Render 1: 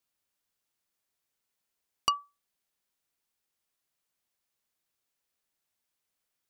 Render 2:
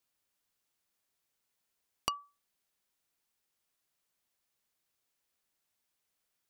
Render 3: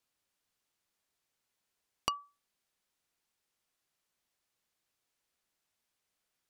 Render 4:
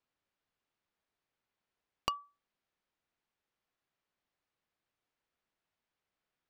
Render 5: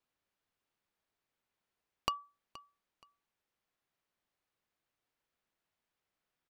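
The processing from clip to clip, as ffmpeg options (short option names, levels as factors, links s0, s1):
-af "acompressor=threshold=0.0251:ratio=5,volume=1.12"
-af "highshelf=f=12000:g=-9,volume=1.12"
-af "adynamicsmooth=sensitivity=2:basefreq=3500"
-af "aecho=1:1:474|948:0.112|0.0269"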